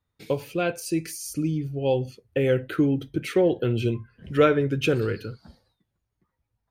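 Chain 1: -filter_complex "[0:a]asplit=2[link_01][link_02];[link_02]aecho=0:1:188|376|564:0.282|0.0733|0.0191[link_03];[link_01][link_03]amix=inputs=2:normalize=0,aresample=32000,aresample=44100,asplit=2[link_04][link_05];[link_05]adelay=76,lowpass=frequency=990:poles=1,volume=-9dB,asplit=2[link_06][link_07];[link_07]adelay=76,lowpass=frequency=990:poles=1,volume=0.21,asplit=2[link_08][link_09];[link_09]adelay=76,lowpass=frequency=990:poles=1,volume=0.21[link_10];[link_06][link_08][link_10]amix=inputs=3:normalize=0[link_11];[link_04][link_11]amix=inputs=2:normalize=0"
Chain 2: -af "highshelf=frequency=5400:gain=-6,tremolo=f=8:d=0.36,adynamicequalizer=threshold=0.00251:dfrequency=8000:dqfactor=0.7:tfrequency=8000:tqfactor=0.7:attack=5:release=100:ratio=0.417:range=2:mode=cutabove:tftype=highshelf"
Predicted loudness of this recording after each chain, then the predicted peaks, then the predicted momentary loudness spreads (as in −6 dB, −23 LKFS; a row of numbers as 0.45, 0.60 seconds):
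−24.5, −27.0 LKFS; −7.5, −9.5 dBFS; 9, 10 LU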